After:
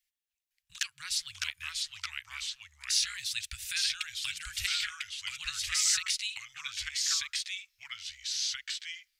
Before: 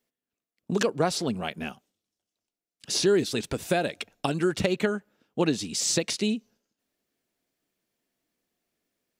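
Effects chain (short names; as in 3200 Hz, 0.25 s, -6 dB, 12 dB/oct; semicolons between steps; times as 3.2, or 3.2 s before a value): inverse Chebyshev band-stop 210–620 Hz, stop band 70 dB; echoes that change speed 0.507 s, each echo -2 st, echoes 2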